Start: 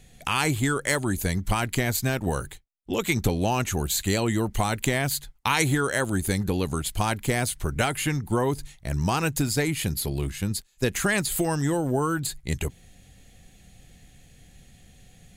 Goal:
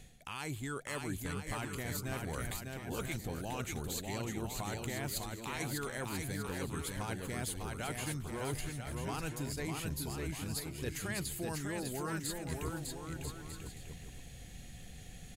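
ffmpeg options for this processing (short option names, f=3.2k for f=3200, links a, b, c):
-af "areverse,acompressor=threshold=-37dB:ratio=12,areverse,aecho=1:1:600|990|1244|1408|1515:0.631|0.398|0.251|0.158|0.1"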